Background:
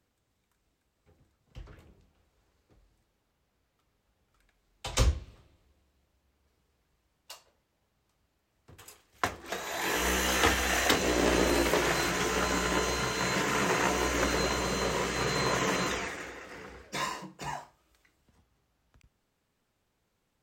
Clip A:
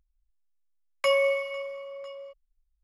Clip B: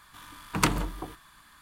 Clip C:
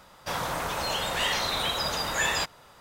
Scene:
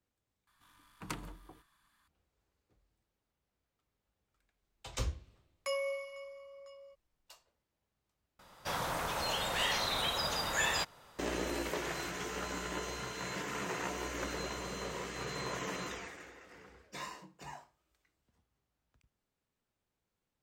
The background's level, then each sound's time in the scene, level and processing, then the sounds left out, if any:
background −10.5 dB
0:00.47: overwrite with B −17.5 dB
0:04.62: mix in A −12.5 dB + high shelf with overshoot 4,300 Hz +6.5 dB, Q 1.5
0:08.39: overwrite with C −5.5 dB

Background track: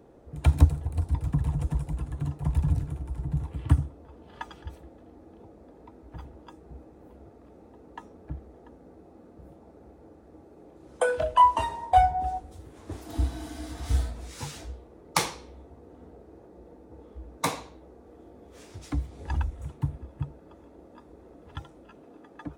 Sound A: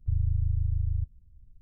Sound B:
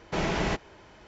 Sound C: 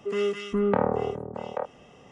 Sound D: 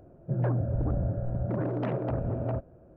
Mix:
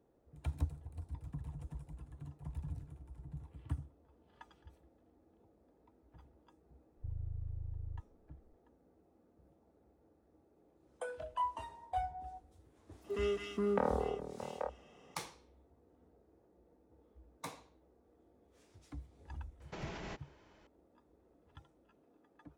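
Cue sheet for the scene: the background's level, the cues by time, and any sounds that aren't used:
background track −18 dB
0:06.96: mix in A −15.5 dB
0:13.04: mix in C −8.5 dB + high-pass filter 170 Hz
0:19.60: mix in B −13 dB + brickwall limiter −23 dBFS
not used: D

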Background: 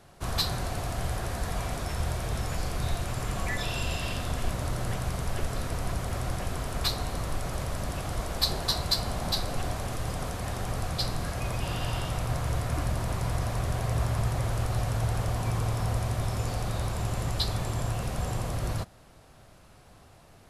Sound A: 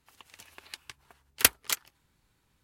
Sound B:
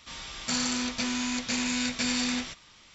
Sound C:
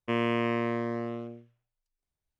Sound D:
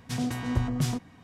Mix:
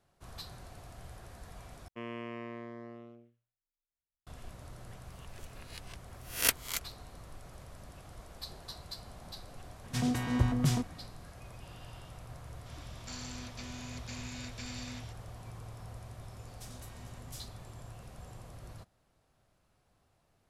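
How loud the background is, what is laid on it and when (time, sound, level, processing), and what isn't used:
background −18 dB
0:01.88: overwrite with C −14 dB
0:05.04: mix in A −9 dB + peak hold with a rise ahead of every peak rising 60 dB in 0.39 s
0:09.84: mix in D −1 dB
0:12.59: mix in B −16 dB
0:16.51: mix in D −9 dB + first-order pre-emphasis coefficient 0.9

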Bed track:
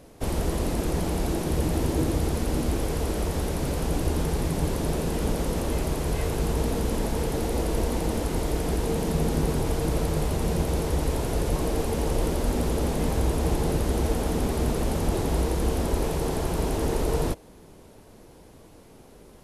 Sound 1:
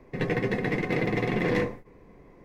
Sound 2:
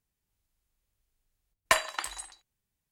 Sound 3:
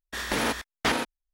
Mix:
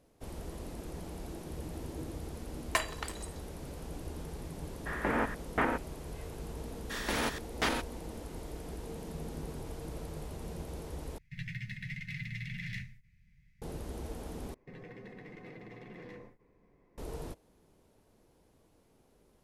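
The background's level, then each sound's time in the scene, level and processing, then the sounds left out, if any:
bed track −16.5 dB
0:01.04: mix in 2 −7 dB
0:04.73: mix in 3 −3 dB + low-pass filter 2,000 Hz 24 dB per octave
0:06.77: mix in 3 −6 dB
0:11.18: overwrite with 1 −7.5 dB + inverse Chebyshev band-stop filter 310–990 Hz, stop band 50 dB
0:14.54: overwrite with 1 −14.5 dB + brickwall limiter −26 dBFS

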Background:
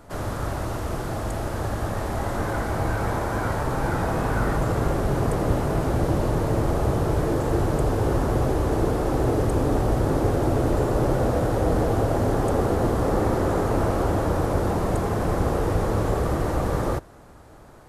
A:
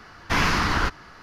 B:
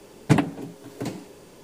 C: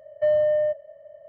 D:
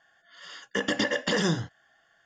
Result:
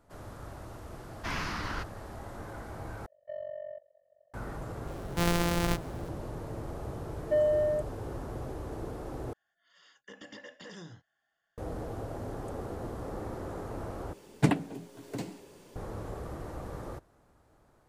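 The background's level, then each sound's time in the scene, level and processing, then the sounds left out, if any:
background −16.5 dB
0:00.94: mix in A −13.5 dB
0:03.06: overwrite with C −16 dB + amplitude modulation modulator 46 Hz, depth 85%
0:04.87: mix in A −6 dB + samples sorted by size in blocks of 256 samples
0:07.09: mix in C −5 dB + spectral dynamics exaggerated over time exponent 1.5
0:09.33: overwrite with D −17 dB + brickwall limiter −20.5 dBFS
0:14.13: overwrite with B −6 dB

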